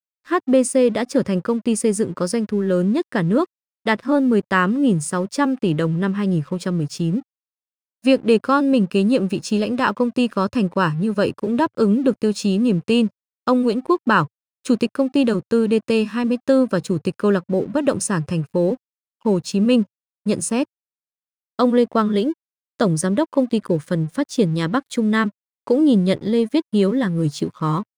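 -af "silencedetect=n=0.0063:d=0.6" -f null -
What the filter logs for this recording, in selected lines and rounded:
silence_start: 7.22
silence_end: 8.04 | silence_duration: 0.82
silence_start: 20.65
silence_end: 21.59 | silence_duration: 0.94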